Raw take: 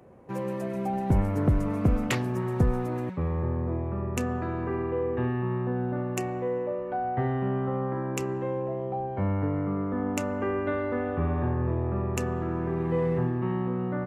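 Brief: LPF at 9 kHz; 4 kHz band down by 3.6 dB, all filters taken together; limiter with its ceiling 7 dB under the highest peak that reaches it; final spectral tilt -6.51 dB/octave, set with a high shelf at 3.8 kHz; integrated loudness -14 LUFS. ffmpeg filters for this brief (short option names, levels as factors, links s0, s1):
-af "lowpass=9000,highshelf=f=3800:g=3.5,equalizer=f=4000:t=o:g=-8,volume=6.68,alimiter=limit=0.596:level=0:latency=1"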